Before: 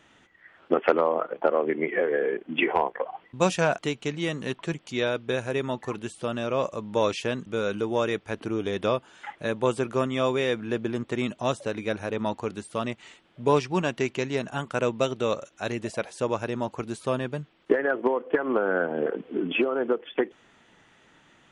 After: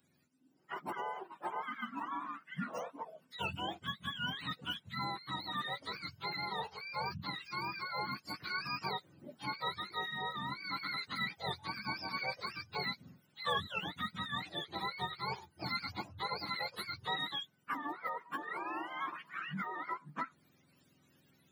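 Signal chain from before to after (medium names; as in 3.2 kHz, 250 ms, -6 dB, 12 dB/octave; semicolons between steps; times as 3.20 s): spectrum inverted on a logarithmic axis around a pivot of 700 Hz; gain riding within 4 dB 0.5 s; pre-emphasis filter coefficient 0.9; trim +4 dB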